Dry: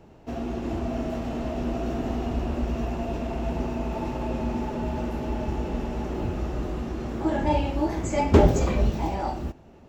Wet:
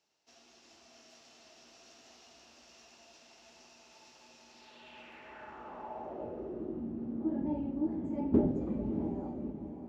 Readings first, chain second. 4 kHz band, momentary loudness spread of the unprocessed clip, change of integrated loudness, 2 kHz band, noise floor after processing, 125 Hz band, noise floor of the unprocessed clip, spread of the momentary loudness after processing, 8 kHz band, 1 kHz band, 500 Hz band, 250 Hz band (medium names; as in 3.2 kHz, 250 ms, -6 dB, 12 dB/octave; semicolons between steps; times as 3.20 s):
-14.0 dB, 8 LU, -8.0 dB, -17.5 dB, -61 dBFS, -17.5 dB, -50 dBFS, 21 LU, no reading, -18.0 dB, -13.5 dB, -8.0 dB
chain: echo that smears into a reverb 640 ms, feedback 42%, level -8 dB; band-pass sweep 5.4 kHz -> 250 Hz, 4.48–6.87 s; trim -3.5 dB